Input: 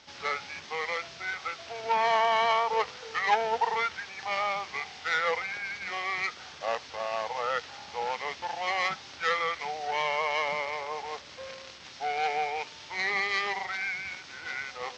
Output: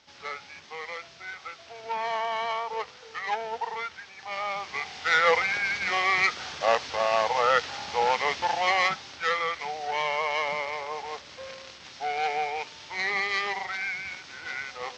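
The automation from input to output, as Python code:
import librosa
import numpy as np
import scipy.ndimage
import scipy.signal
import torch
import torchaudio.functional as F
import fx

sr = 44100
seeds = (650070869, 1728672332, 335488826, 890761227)

y = fx.gain(x, sr, db=fx.line((4.23, -5.0), (4.7, 1.5), (5.39, 8.0), (8.51, 8.0), (9.2, 1.0)))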